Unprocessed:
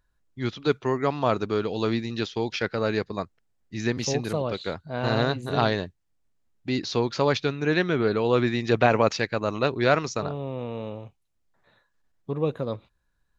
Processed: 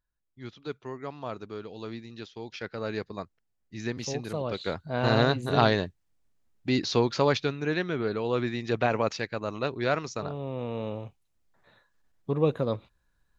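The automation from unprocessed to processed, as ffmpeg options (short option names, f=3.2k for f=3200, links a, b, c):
-af "volume=8.5dB,afade=t=in:st=2.38:d=0.62:silence=0.473151,afade=t=in:st=4.29:d=0.56:silence=0.421697,afade=t=out:st=6.94:d=0.85:silence=0.446684,afade=t=in:st=10.12:d=0.87:silence=0.421697"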